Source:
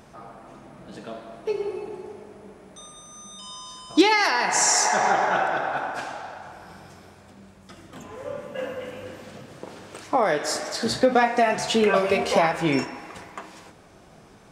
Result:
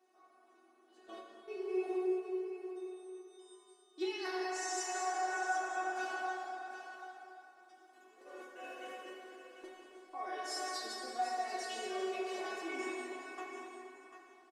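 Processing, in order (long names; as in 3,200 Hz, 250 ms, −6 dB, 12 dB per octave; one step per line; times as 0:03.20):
Butterworth high-pass 240 Hz 72 dB per octave
noise gate −36 dBFS, range −16 dB
reversed playback
downward compressor 8 to 1, threshold −34 dBFS, peak gain reduction 22 dB
reversed playback
tuned comb filter 370 Hz, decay 0.18 s, harmonics all, mix 100%
on a send: single-tap delay 744 ms −10.5 dB
on the sum: dense smooth reverb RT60 3.3 s, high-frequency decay 0.7×, DRR −1.5 dB
level +6.5 dB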